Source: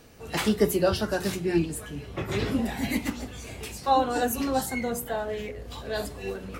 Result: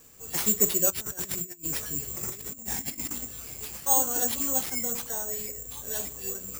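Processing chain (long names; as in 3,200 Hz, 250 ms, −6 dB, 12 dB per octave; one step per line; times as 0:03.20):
notch filter 670 Hz, Q 12
0:00.90–0:03.18: compressor whose output falls as the input rises −33 dBFS, ratio −0.5
bad sample-rate conversion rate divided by 6×, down none, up zero stuff
level −8.5 dB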